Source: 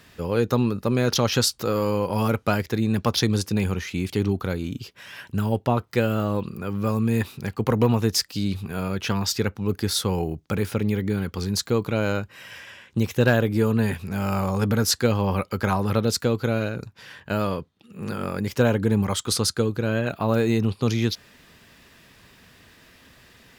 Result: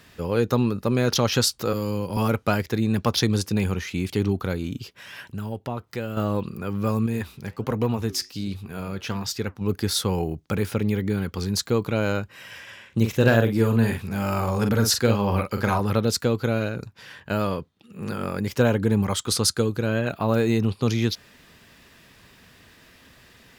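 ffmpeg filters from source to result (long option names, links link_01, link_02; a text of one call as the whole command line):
ffmpeg -i in.wav -filter_complex "[0:a]asettb=1/sr,asplit=3[link_01][link_02][link_03];[link_01]atrim=end=1.734[link_04];[link_02]atrim=start=1.73:end=2.17,asetpts=PTS-STARTPTS,afade=type=in:duration=0.004:curve=qsin,afade=type=out:start_time=0.436:duration=0.004:curve=qsin,acrossover=split=330|3000[link_05][link_06][link_07];[link_06]acompressor=threshold=-46dB:ratio=1.5:attack=3.2:release=140:knee=2.83:detection=peak[link_08];[link_05][link_08][link_07]amix=inputs=3:normalize=0[link_09];[link_03]atrim=start=2.166[link_10];[link_04][link_09]acrossfade=duration=0.004:curve1=hsin:curve2=qsin[link_11];[link_11][link_10]acrossfade=duration=0.004:curve1=qsin:curve2=hsin,asettb=1/sr,asplit=3[link_12][link_13][link_14];[link_12]atrim=end=5.254[link_15];[link_13]atrim=start=5.25:end=6.17,asetpts=PTS-STARTPTS,afade=type=in:duration=0.004:curve=qsin,afade=type=out:start_time=0.916:duration=0.004:curve=qsin,acompressor=threshold=-40dB:ratio=1.5:attack=3.2:release=140:knee=1:detection=peak[link_16];[link_14]atrim=start=6.166[link_17];[link_15][link_16]acrossfade=duration=0.004:curve1=hsin:curve2=qsin[link_18];[link_18][link_17]acrossfade=duration=0.004:curve1=qsin:curve2=hsin,asettb=1/sr,asplit=3[link_19][link_20][link_21];[link_19]atrim=end=7.064[link_22];[link_20]atrim=start=7.06:end=9.61,asetpts=PTS-STARTPTS,afade=type=in:duration=0.004:curve=qsin,afade=type=out:start_time=2.546:duration=0.004:curve=qsin,flanger=delay=2.6:depth=7.3:regen=-83:speed=1.3:shape=sinusoidal[link_23];[link_21]atrim=start=9.606[link_24];[link_22][link_23]acrossfade=duration=0.004:curve1=hsin:curve2=qsin[link_25];[link_25][link_24]acrossfade=duration=0.004:curve1=qsin:curve2=hsin,asettb=1/sr,asplit=3[link_26][link_27][link_28];[link_26]atrim=end=12.644[link_29];[link_27]atrim=start=12.64:end=15.81,asetpts=PTS-STARTPTS,afade=type=in:duration=0.004:curve=qsin,afade=type=out:start_time=3.166:duration=0.004:curve=qsin,asplit=2[link_30][link_31];[link_31]adelay=44,volume=-6.5dB[link_32];[link_30][link_32]amix=inputs=2:normalize=0,atrim=end_sample=139797[link_33];[link_28]atrim=start=15.806[link_34];[link_29][link_33]acrossfade=duration=0.004:curve1=hsin:curve2=qsin[link_35];[link_35][link_34]acrossfade=duration=0.004:curve1=qsin:curve2=hsin,asettb=1/sr,asplit=3[link_36][link_37][link_38];[link_36]atrim=end=19.434[link_39];[link_37]atrim=start=19.43:end=19.86,asetpts=PTS-STARTPTS,afade=type=in:duration=0.004:curve=qsin,afade=type=out:start_time=0.426:duration=0.004:curve=qsin,equalizer=frequency=10000:width=0.46:gain=4[link_40];[link_38]atrim=start=19.856[link_41];[link_39][link_40]acrossfade=duration=0.004:curve1=hsin:curve2=qsin[link_42];[link_42][link_41]acrossfade=duration=0.004:curve1=qsin:curve2=hsin" out.wav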